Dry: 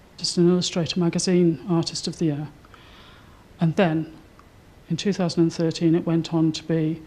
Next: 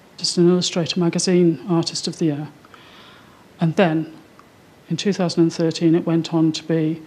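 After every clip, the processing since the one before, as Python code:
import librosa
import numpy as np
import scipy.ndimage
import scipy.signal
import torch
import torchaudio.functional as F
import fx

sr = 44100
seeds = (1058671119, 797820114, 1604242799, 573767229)

y = scipy.signal.sosfilt(scipy.signal.butter(2, 150.0, 'highpass', fs=sr, output='sos'), x)
y = y * 10.0 ** (4.0 / 20.0)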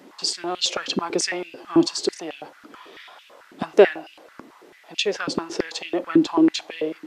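y = fx.filter_held_highpass(x, sr, hz=9.1, low_hz=280.0, high_hz=2700.0)
y = y * 10.0 ** (-3.0 / 20.0)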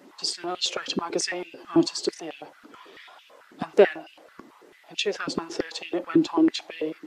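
y = fx.spec_quant(x, sr, step_db=15)
y = y * 10.0 ** (-3.0 / 20.0)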